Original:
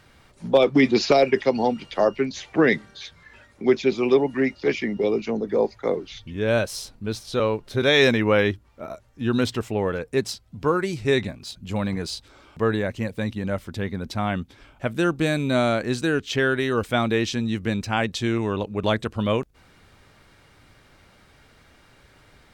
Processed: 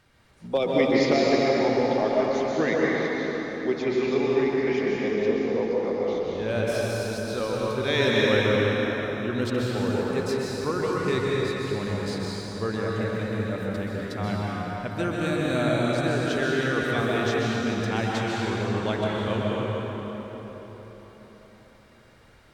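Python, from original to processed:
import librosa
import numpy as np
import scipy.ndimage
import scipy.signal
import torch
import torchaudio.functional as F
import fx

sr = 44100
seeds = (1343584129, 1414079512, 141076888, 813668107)

y = fx.rev_plate(x, sr, seeds[0], rt60_s=4.6, hf_ratio=0.65, predelay_ms=115, drr_db=-5.0)
y = y * librosa.db_to_amplitude(-8.0)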